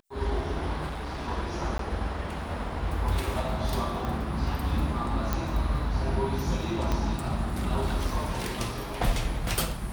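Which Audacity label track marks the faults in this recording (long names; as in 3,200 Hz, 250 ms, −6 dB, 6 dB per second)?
0.870000	1.290000	clipping −31 dBFS
1.780000	1.790000	drop-out 13 ms
4.050000	4.050000	click −20 dBFS
5.330000	5.330000	click −13 dBFS
6.920000	6.920000	click −15 dBFS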